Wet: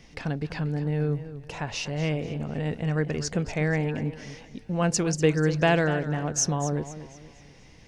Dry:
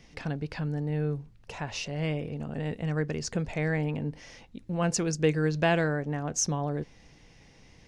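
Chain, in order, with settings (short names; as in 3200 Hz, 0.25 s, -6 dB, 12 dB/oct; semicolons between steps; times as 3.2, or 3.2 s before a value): warbling echo 0.243 s, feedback 39%, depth 103 cents, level -13.5 dB; gain +3 dB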